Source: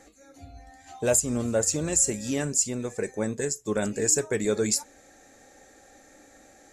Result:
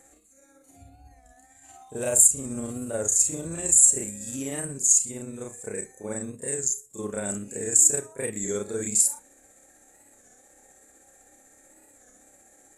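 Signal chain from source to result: resonant high shelf 6600 Hz +8.5 dB, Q 3; granular stretch 1.9×, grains 0.126 s; record warp 33 1/3 rpm, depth 100 cents; gain -4.5 dB

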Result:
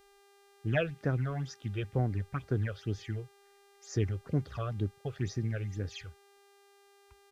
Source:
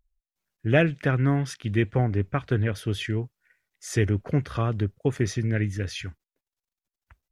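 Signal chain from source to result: phaser stages 8, 2.1 Hz, lowest notch 240–3100 Hz; downsampling 16000 Hz; buzz 400 Hz, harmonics 38, -55 dBFS -5 dB/oct; gain -7.5 dB

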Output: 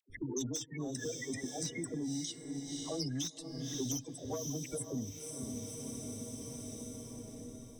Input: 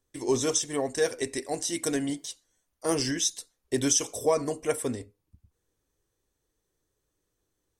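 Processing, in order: LPF 3700 Hz 6 dB/oct; spectral gate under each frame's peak -15 dB strong; band shelf 730 Hz -16 dB 2.6 oct; dispersion lows, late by 92 ms, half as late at 660 Hz; soft clip -28 dBFS, distortion -12 dB; diffused feedback echo 0.532 s, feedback 42%, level -12 dB; three-band squash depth 100%; gain +1 dB

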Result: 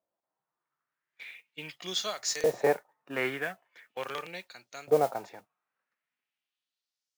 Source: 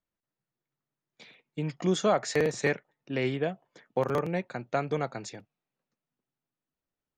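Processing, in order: LFO band-pass saw up 0.41 Hz 600–6900 Hz; modulation noise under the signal 21 dB; harmonic-percussive split harmonic +8 dB; gain +7 dB

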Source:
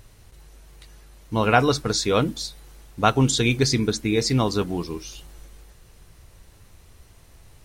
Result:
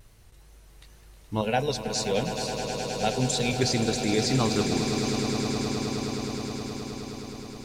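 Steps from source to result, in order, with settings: wow and flutter 71 cents; 1.41–3.53 fixed phaser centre 320 Hz, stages 6; swelling echo 0.105 s, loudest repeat 8, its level -11.5 dB; gain -4.5 dB

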